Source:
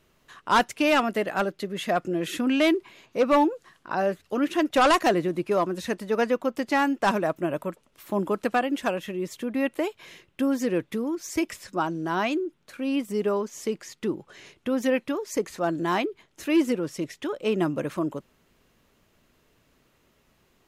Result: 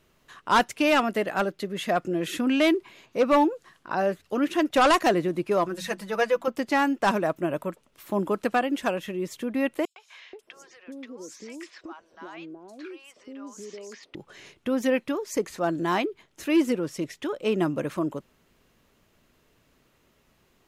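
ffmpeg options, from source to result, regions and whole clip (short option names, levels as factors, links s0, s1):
-filter_complex "[0:a]asettb=1/sr,asplit=3[s0][s1][s2];[s0]atrim=end=5.644[s3];[s1]atrim=start=5.64:end=6.48,asetpts=PTS-STARTPTS,afade=t=in:d=0.004:c=qsin,afade=t=out:st=0.836:d=0.004:c=qsin,equalizer=f=280:w=1.1:g=-8,bandreject=f=60:t=h:w=6,bandreject=f=120:t=h:w=6,bandreject=f=180:t=h:w=6,bandreject=f=240:t=h:w=6,bandreject=f=300:t=h:w=6,aecho=1:1:6:0.74,atrim=end_sample=37044[s4];[s2]atrim=start=6.476[s5];[s3][s4]acrossfade=d=0.004:c1=hsin:c2=qsin[s6];[s6][s5]acrossfade=d=0.004:c1=qsin:c2=hsin,asettb=1/sr,asplit=3[s7][s8][s9];[s7]atrim=end=9.854[s10];[s8]atrim=start=9.85:end=14.15,asetpts=PTS-STARTPTS,afade=t=in:d=0.004:c=qsin,afade=t=out:st=4.296:d=0.004:c=qsin,acrossover=split=230 7900:gain=0.112 1 0.126[s11][s12][s13];[s11][s12][s13]amix=inputs=3:normalize=0,acompressor=threshold=0.0112:ratio=4:attack=3.2:release=140:knee=1:detection=peak,acrossover=split=710|5500[s14][s15][s16];[s15]adelay=110[s17];[s14]adelay=480[s18];[s18][s17][s16]amix=inputs=3:normalize=0,atrim=end_sample=189630[s19];[s9]atrim=start=14.146[s20];[s10][s19]acrossfade=d=0.004:c1=hsin:c2=qsin[s21];[s21][s20]acrossfade=d=0.004:c1=qsin:c2=hsin"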